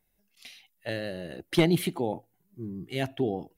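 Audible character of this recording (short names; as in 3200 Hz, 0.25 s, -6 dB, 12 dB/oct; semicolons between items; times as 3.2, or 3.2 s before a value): noise floor -73 dBFS; spectral tilt -5.0 dB/oct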